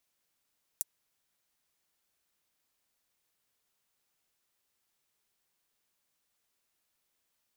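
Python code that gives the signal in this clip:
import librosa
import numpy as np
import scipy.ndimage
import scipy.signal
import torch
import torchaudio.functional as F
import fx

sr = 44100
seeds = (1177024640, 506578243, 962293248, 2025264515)

y = fx.drum_hat(sr, length_s=0.24, from_hz=7800.0, decay_s=0.03)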